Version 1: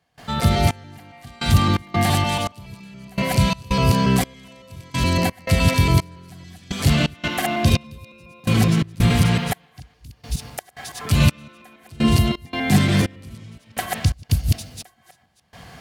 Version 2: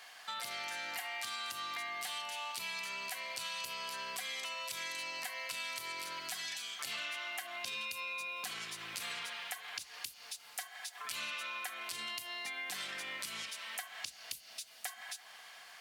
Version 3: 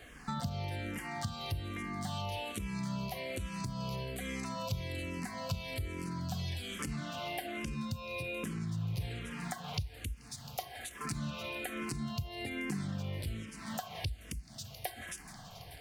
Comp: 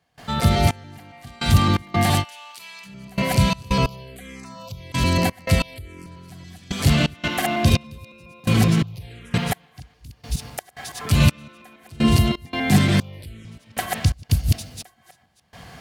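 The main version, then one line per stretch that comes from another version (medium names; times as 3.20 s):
1
2.22–2.86 s: from 2, crossfade 0.06 s
3.86–4.92 s: from 3
5.62–6.06 s: from 3
8.83–9.34 s: from 3
13.00–13.45 s: from 3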